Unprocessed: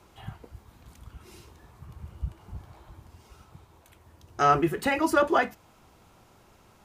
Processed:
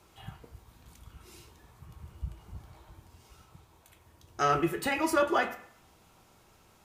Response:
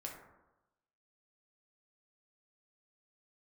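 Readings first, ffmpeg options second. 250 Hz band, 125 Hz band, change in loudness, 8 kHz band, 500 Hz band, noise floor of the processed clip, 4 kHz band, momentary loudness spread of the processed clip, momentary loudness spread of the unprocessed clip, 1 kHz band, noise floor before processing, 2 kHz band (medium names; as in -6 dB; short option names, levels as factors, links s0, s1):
-4.0 dB, -4.5 dB, -4.0 dB, 0.0 dB, -3.5 dB, -62 dBFS, -1.0 dB, 22 LU, 22 LU, -5.0 dB, -59 dBFS, -3.0 dB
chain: -filter_complex "[0:a]asplit=2[s0][s1];[1:a]atrim=start_sample=2205,asetrate=74970,aresample=44100,highshelf=f=2300:g=11.5[s2];[s1][s2]afir=irnorm=-1:irlink=0,volume=1.41[s3];[s0][s3]amix=inputs=2:normalize=0,volume=0.398"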